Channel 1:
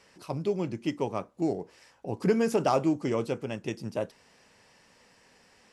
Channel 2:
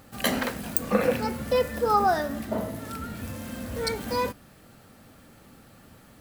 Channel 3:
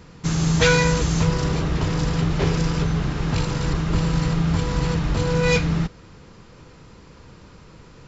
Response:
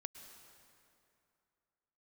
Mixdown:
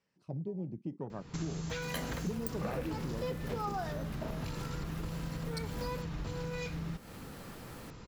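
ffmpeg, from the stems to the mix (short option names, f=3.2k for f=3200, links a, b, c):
-filter_complex "[0:a]lowpass=7.6k,afwtdn=0.0251,equalizer=f=160:t=o:w=1.3:g=11,volume=-7dB[a];[1:a]highpass=150,acompressor=mode=upward:threshold=-37dB:ratio=2.5,adelay=1700,volume=-4dB[b];[2:a]acompressor=threshold=-23dB:ratio=6,adelay=1100,volume=-4dB[c];[a][b][c]amix=inputs=3:normalize=0,acompressor=threshold=-39dB:ratio=2.5"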